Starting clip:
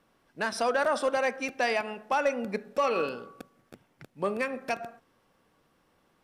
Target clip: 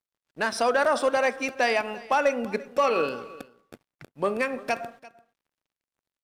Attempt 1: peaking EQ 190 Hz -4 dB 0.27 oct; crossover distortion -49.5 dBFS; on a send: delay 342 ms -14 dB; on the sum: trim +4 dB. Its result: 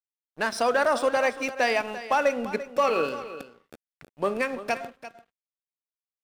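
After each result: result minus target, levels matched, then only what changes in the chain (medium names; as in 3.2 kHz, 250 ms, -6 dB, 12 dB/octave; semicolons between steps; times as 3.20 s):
crossover distortion: distortion +10 dB; echo-to-direct +6.5 dB
change: crossover distortion -61 dBFS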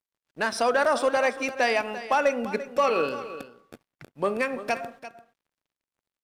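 echo-to-direct +6.5 dB
change: delay 342 ms -20.5 dB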